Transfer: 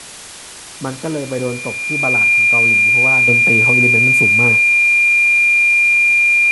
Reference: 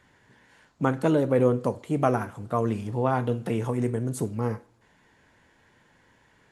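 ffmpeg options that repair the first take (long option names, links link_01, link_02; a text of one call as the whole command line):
ffmpeg -i in.wav -af "bandreject=frequency=2400:width=30,afwtdn=0.025,asetnsamples=nb_out_samples=441:pad=0,asendcmd='3.28 volume volume -7dB',volume=0dB" out.wav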